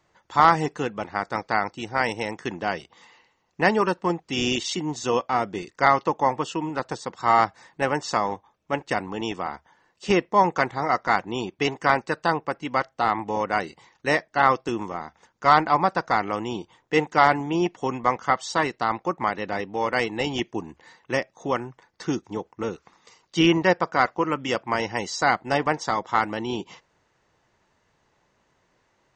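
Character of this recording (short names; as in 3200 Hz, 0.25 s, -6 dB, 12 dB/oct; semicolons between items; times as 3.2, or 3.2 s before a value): noise floor -69 dBFS; spectral tilt -3.0 dB/oct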